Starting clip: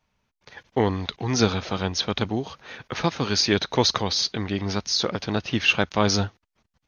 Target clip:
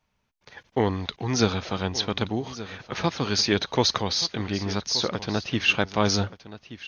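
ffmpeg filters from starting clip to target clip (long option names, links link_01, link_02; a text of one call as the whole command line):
ffmpeg -i in.wav -af "aecho=1:1:1176:0.178,volume=-1.5dB" out.wav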